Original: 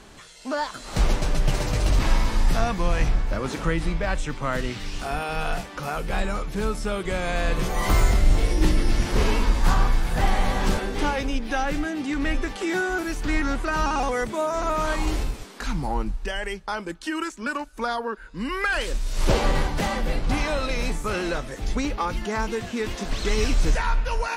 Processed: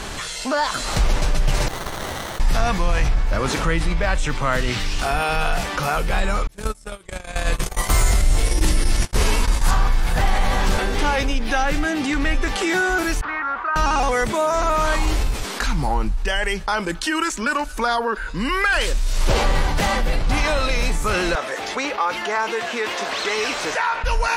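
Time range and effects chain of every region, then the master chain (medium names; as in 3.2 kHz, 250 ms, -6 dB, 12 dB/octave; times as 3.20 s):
1.68–2.40 s: rippled Chebyshev high-pass 1.9 kHz, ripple 6 dB + sliding maximum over 17 samples
6.47–9.71 s: peaking EQ 9.5 kHz +10.5 dB 1.2 oct + gate -22 dBFS, range -54 dB
13.21–13.76 s: band-pass filter 1.2 kHz, Q 2.7 + distance through air 180 m
21.35–24.04 s: high-pass 490 Hz + treble shelf 4.2 kHz -11.5 dB
whole clip: peaking EQ 260 Hz -5.5 dB 2.1 oct; level flattener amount 50%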